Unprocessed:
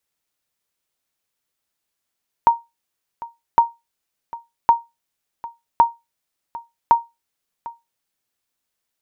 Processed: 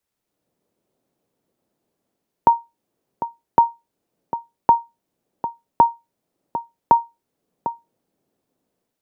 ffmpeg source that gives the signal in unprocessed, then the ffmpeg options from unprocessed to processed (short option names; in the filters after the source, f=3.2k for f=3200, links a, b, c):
-f lavfi -i "aevalsrc='0.631*(sin(2*PI*932*mod(t,1.11))*exp(-6.91*mod(t,1.11)/0.21)+0.112*sin(2*PI*932*max(mod(t,1.11)-0.75,0))*exp(-6.91*max(mod(t,1.11)-0.75,0)/0.21))':d=5.55:s=44100"
-filter_complex "[0:a]tiltshelf=f=970:g=4,acrossover=split=130|690[a][b][c];[b]dynaudnorm=f=140:g=5:m=16.5dB[d];[a][d][c]amix=inputs=3:normalize=0,alimiter=level_in=0.5dB:limit=-1dB:release=50:level=0:latency=1"